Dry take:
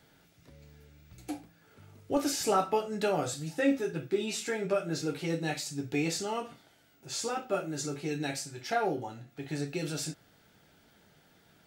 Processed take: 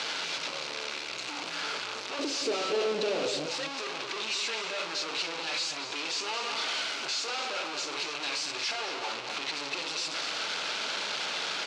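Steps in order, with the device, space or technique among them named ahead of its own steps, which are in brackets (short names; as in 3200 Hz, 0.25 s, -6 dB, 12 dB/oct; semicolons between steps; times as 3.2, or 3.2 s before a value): home computer beeper (infinite clipping; speaker cabinet 680–5900 Hz, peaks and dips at 730 Hz -5 dB, 1800 Hz -6 dB, 2600 Hz +4 dB, 4200 Hz +4 dB); 2.19–3.46 resonant low shelf 640 Hz +11 dB, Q 1.5; outdoor echo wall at 39 m, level -7 dB; gain +4 dB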